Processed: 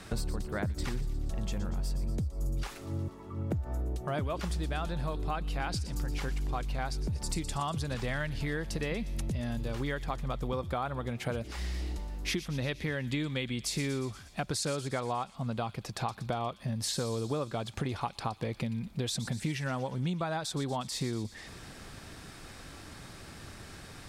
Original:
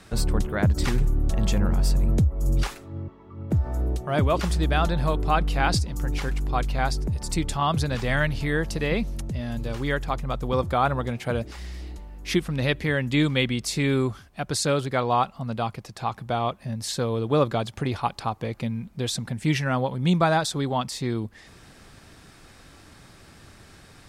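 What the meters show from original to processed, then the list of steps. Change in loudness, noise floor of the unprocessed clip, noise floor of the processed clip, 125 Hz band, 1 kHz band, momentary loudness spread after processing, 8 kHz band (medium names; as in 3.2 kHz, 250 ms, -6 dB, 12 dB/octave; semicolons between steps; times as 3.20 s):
-9.5 dB, -50 dBFS, -49 dBFS, -8.5 dB, -10.5 dB, 11 LU, -5.5 dB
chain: compression 10:1, threshold -32 dBFS, peak gain reduction 16.5 dB; on a send: feedback echo behind a high-pass 119 ms, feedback 64%, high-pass 3.4 kHz, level -10.5 dB; on the sum: trim +2 dB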